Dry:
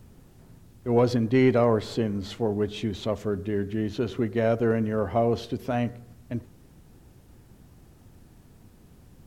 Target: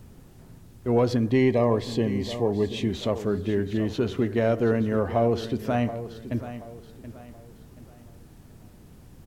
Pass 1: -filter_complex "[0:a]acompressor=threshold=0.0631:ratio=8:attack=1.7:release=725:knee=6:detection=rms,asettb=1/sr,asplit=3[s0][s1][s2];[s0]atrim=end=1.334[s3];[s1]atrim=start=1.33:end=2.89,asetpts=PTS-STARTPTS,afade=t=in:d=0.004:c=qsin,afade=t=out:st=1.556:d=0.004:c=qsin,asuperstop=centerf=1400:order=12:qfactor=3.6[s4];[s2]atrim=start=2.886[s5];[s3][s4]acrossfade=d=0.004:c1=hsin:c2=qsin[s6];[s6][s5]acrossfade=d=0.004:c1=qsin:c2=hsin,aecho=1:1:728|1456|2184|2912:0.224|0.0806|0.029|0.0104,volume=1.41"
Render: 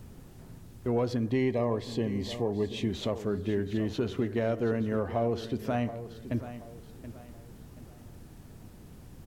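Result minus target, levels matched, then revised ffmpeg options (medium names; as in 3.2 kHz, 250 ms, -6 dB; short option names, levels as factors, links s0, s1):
compression: peak gain reduction +7 dB
-filter_complex "[0:a]acompressor=threshold=0.168:ratio=8:attack=1.7:release=725:knee=6:detection=rms,asettb=1/sr,asplit=3[s0][s1][s2];[s0]atrim=end=1.334[s3];[s1]atrim=start=1.33:end=2.89,asetpts=PTS-STARTPTS,afade=t=in:d=0.004:c=qsin,afade=t=out:st=1.556:d=0.004:c=qsin,asuperstop=centerf=1400:order=12:qfactor=3.6[s4];[s2]atrim=start=2.886[s5];[s3][s4]acrossfade=d=0.004:c1=hsin:c2=qsin[s6];[s6][s5]acrossfade=d=0.004:c1=qsin:c2=hsin,aecho=1:1:728|1456|2184|2912:0.224|0.0806|0.029|0.0104,volume=1.41"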